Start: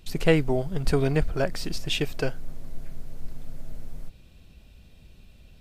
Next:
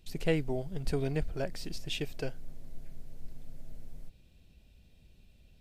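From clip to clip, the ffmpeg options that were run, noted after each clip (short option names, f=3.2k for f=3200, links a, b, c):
-af "equalizer=f=1.2k:t=o:w=0.77:g=-6.5,volume=-8.5dB"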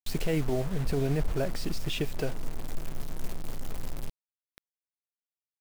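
-af "alimiter=level_in=4dB:limit=-24dB:level=0:latency=1:release=26,volume=-4dB,acrusher=bits=7:mix=0:aa=0.000001,adynamicequalizer=threshold=0.00158:dfrequency=1900:dqfactor=0.7:tfrequency=1900:tqfactor=0.7:attack=5:release=100:ratio=0.375:range=3:mode=cutabove:tftype=highshelf,volume=8.5dB"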